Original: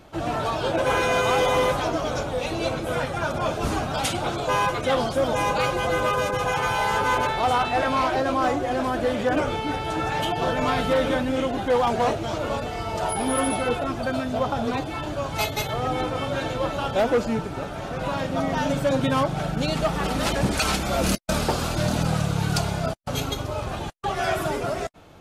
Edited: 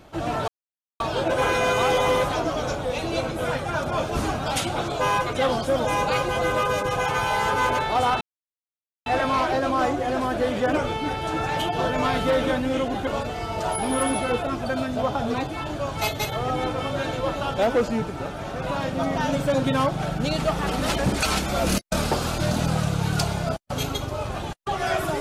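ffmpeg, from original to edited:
-filter_complex "[0:a]asplit=4[a][b][c][d];[a]atrim=end=0.48,asetpts=PTS-STARTPTS,afade=t=out:st=0.476:d=0.004:c=hsin,apad=pad_dur=0.52[e];[b]atrim=start=0.48:end=7.69,asetpts=PTS-STARTPTS,afade=t=in:d=0.004:c=hsin,afade=t=out:st=7.206:d=0.004:c=hsin,apad=pad_dur=0.85[f];[c]atrim=start=7.69:end=11.702,asetpts=PTS-STARTPTS,afade=t=in:d=0.004:c=hsin[g];[d]atrim=start=12.438[h];[e][f][g]concat=n=3:v=0:a=1[i];[i][h]acrossfade=d=0.004:c1=hsin:c2=hsin"

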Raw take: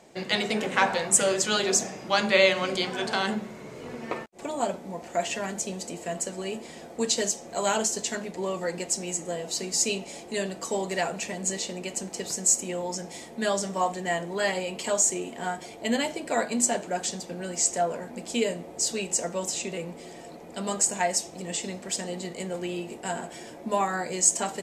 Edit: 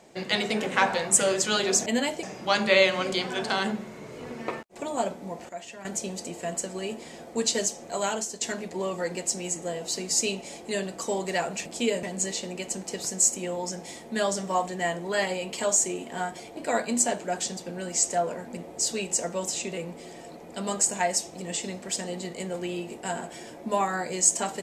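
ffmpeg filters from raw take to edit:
-filter_complex "[0:a]asplit=10[a][b][c][d][e][f][g][h][i][j];[a]atrim=end=1.862[k];[b]atrim=start=15.828:end=16.202[l];[c]atrim=start=1.858:end=5.122[m];[d]atrim=start=5.118:end=5.482,asetpts=PTS-STARTPTS,volume=-11.5dB[n];[e]atrim=start=5.478:end=8.04,asetpts=PTS-STARTPTS,afade=t=out:st=1.972:d=0.59:silence=0.354813[o];[f]atrim=start=8.04:end=11.292,asetpts=PTS-STARTPTS,afade=t=in:d=0.004:c=hsin:silence=0.354813[p];[g]atrim=start=18.198:end=18.572[q];[h]atrim=start=11.288:end=15.832[r];[i]atrim=start=16.198:end=18.202[s];[j]atrim=start=18.568[t];[k][l]acrossfade=d=0.004:c1=hsin:c2=hsin[u];[u][m]acrossfade=d=0.004:c1=hsin:c2=hsin[v];[v][n]acrossfade=d=0.004:c1=hsin:c2=hsin[w];[o][p]concat=n=2:v=0:a=1[x];[w][x]acrossfade=d=0.004:c1=hsin:c2=hsin[y];[y][q]acrossfade=d=0.004:c1=hsin:c2=hsin[z];[z][r]acrossfade=d=0.004:c1=hsin:c2=hsin[aa];[aa][s]acrossfade=d=0.004:c1=hsin:c2=hsin[ab];[ab][t]acrossfade=d=0.004:c1=hsin:c2=hsin"

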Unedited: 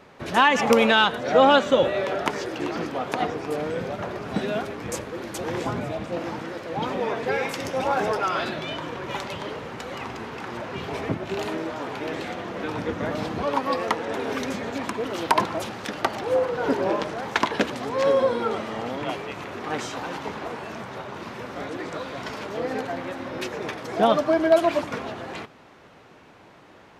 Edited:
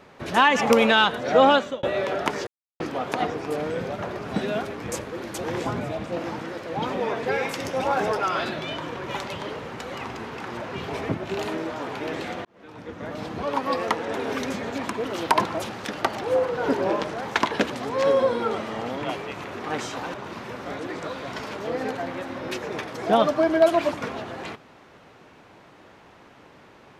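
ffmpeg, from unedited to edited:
-filter_complex "[0:a]asplit=6[a][b][c][d][e][f];[a]atrim=end=1.83,asetpts=PTS-STARTPTS,afade=t=out:st=1.48:d=0.35[g];[b]atrim=start=1.83:end=2.47,asetpts=PTS-STARTPTS,afade=t=in:d=0.004:c=hsin,afade=t=out:st=0.636:d=0.004:c=hsin[h];[c]atrim=start=2.47:end=2.8,asetpts=PTS-STARTPTS,volume=0[i];[d]atrim=start=2.8:end=12.45,asetpts=PTS-STARTPTS,afade=t=in:d=0.004:c=hsin,afade=t=out:st=9.646:d=0.004:c=hsin[j];[e]atrim=start=12.45:end=20.142,asetpts=PTS-STARTPTS,afade=t=in:d=1.31[k];[f]atrim=start=21.038[l];[g][h][i][j][k]concat=n=5:v=0:a=1[m];[m][l]acrossfade=d=0.004:c1=hsin:c2=hsin"

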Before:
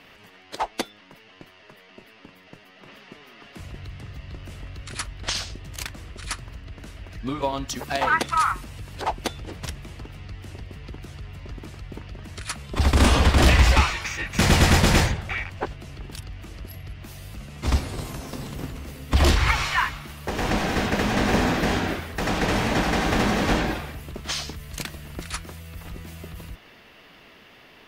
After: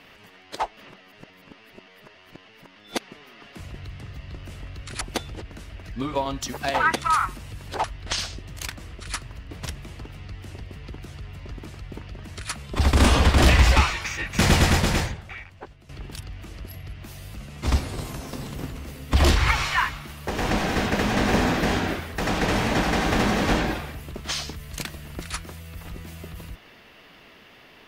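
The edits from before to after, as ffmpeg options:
-filter_complex "[0:a]asplit=8[a][b][c][d][e][f][g][h];[a]atrim=end=0.772[i];[b]atrim=start=0.768:end=3.002,asetpts=PTS-STARTPTS,areverse[j];[c]atrim=start=2.998:end=5.012[k];[d]atrim=start=9.108:end=9.512[l];[e]atrim=start=6.678:end=9.112[m];[f]atrim=start=5.008:end=6.682[n];[g]atrim=start=9.508:end=15.89,asetpts=PTS-STARTPTS,afade=t=out:st=4.982:d=1.4:c=qua:silence=0.223872[o];[h]atrim=start=15.89,asetpts=PTS-STARTPTS,afade=t=in:d=0.004:c=hsin:silence=0.223872[p];[i][j]acrossfade=d=0.004:c1=hsin:c2=hsin[q];[q][k]acrossfade=d=0.004:c1=hsin:c2=hsin[r];[r][l]acrossfade=d=0.004:c1=hsin:c2=hsin[s];[s][m]acrossfade=d=0.004:c1=hsin:c2=hsin[t];[t][n]acrossfade=d=0.004:c1=hsin:c2=hsin[u];[o][p]concat=n=2:v=0:a=1[v];[u][v]acrossfade=d=0.004:c1=hsin:c2=hsin"

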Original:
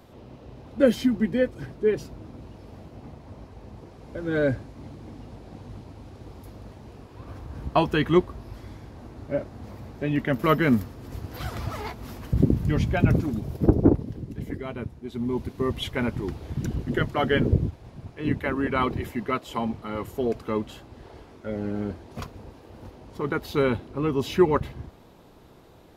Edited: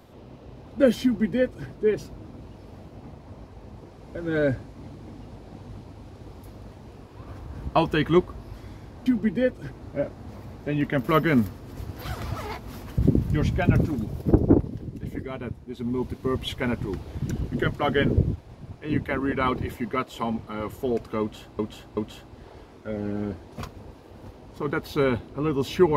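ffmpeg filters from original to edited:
-filter_complex "[0:a]asplit=5[a][b][c][d][e];[a]atrim=end=9.062[f];[b]atrim=start=1.028:end=1.682[g];[c]atrim=start=9.058:end=20.942[h];[d]atrim=start=20.558:end=20.942[i];[e]atrim=start=20.558[j];[f][g]acrossfade=d=0.004:c1=hsin:c2=hsin[k];[k][h]acrossfade=d=0.004:c1=hsin:c2=hsin[l];[l][i]acrossfade=d=0.004:c1=hsin:c2=hsin[m];[m][j]acrossfade=d=0.004:c1=hsin:c2=hsin"

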